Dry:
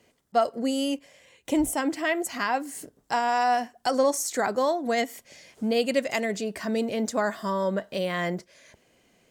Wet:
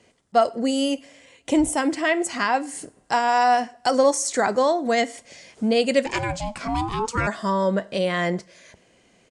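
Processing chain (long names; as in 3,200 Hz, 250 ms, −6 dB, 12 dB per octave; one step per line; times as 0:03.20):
coupled-rooms reverb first 0.47 s, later 2.9 s, from −27 dB, DRR 17 dB
0:06.05–0:07.26: ring modulation 280 Hz → 790 Hz
downsampling to 22,050 Hz
level +4.5 dB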